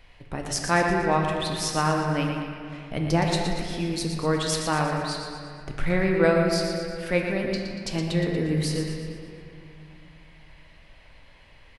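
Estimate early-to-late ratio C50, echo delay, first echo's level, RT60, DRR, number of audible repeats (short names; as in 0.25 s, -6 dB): 1.5 dB, 0.118 s, -7.5 dB, 2.4 s, 0.0 dB, 2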